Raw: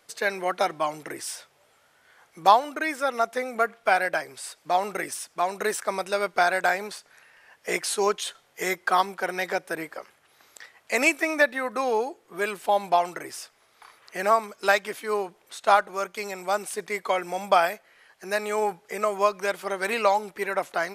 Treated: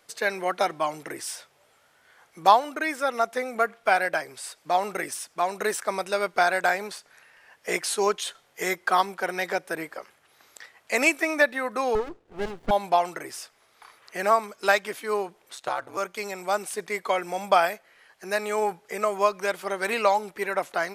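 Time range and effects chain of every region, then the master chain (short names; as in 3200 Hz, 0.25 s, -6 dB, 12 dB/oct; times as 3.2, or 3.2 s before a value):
11.95–12.71 air absorption 100 m + running maximum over 33 samples
15.55–15.97 compressor, threshold -21 dBFS + ring modulator 67 Hz
whole clip: dry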